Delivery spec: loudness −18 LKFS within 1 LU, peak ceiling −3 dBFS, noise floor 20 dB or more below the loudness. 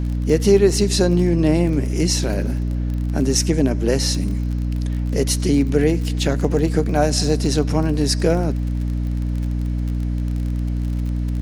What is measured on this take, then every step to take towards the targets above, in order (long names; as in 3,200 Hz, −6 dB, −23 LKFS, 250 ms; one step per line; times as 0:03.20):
crackle rate 31 per second; mains hum 60 Hz; hum harmonics up to 300 Hz; level of the hum −19 dBFS; integrated loudness −20.0 LKFS; sample peak −3.0 dBFS; target loudness −18.0 LKFS
→ click removal
hum removal 60 Hz, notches 5
level +2 dB
brickwall limiter −3 dBFS